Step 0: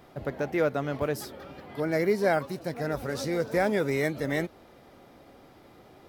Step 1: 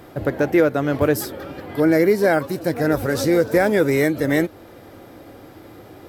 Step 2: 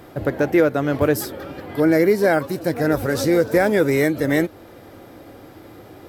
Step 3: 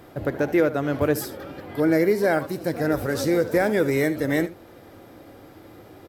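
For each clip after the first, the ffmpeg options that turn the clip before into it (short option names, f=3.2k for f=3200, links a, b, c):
-af "equalizer=f=100:t=o:w=0.33:g=11,equalizer=f=315:t=o:w=0.33:g=8,equalizer=f=500:t=o:w=0.33:g=4,equalizer=f=1.6k:t=o:w=0.33:g=4,equalizer=f=8k:t=o:w=0.33:g=4,equalizer=f=12.5k:t=o:w=0.33:g=9,alimiter=limit=-14dB:level=0:latency=1:release=362,volume=8dB"
-af anull
-af "aecho=1:1:74:0.178,volume=-4dB"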